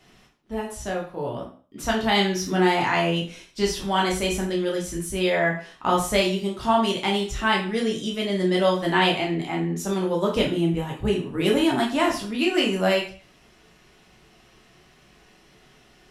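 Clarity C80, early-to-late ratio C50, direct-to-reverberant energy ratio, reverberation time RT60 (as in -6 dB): 12.0 dB, 7.0 dB, -2.0 dB, 0.40 s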